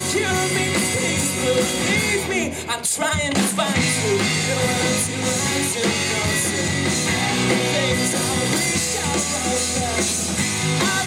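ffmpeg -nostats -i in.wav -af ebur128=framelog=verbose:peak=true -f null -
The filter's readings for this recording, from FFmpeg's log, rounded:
Integrated loudness:
  I:         -19.4 LUFS
  Threshold: -29.4 LUFS
Loudness range:
  LRA:         0.5 LU
  Threshold: -39.4 LUFS
  LRA low:   -19.6 LUFS
  LRA high:  -19.1 LUFS
True peak:
  Peak:       -6.5 dBFS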